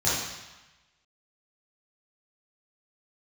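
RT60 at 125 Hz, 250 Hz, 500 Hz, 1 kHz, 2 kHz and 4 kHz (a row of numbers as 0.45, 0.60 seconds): 1.1, 1.0, 0.95, 1.2, 1.2, 1.1 seconds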